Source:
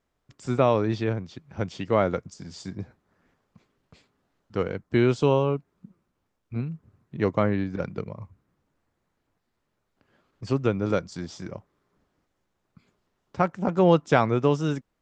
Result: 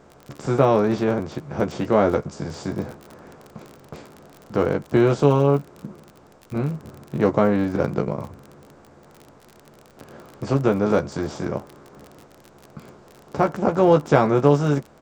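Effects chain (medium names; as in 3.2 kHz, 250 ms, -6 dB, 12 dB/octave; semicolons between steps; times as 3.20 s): spectral levelling over time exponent 0.6; peaking EQ 2.8 kHz -7 dB 1.7 oct; doubling 14 ms -5 dB; crackle 31 per s -32 dBFS; trim +1 dB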